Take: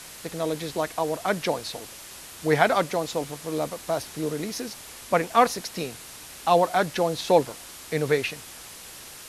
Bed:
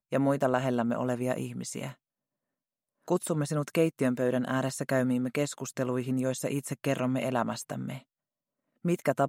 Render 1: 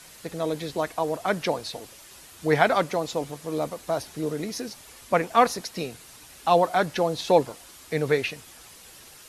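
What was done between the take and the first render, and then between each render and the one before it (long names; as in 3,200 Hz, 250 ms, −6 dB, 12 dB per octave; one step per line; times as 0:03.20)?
broadband denoise 7 dB, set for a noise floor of −43 dBFS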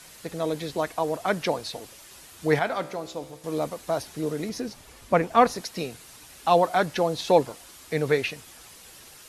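0:02.59–0:03.44: tuned comb filter 64 Hz, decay 1.1 s
0:04.49–0:05.56: spectral tilt −1.5 dB per octave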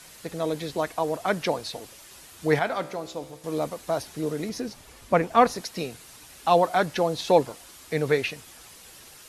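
no processing that can be heard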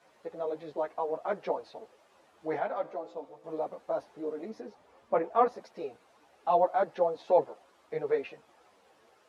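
resonant band-pass 630 Hz, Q 1.3
string-ensemble chorus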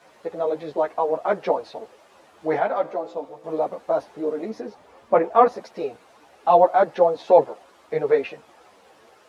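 level +10 dB
brickwall limiter −3 dBFS, peak gain reduction 1 dB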